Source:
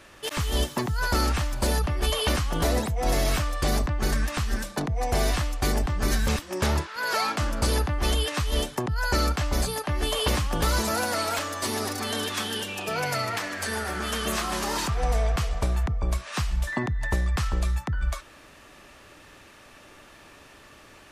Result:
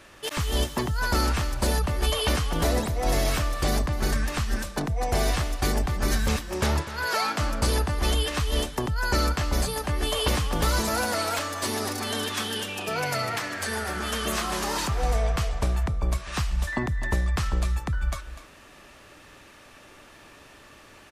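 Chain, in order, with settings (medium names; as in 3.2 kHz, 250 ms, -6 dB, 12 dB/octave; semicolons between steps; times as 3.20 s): delay 248 ms -14 dB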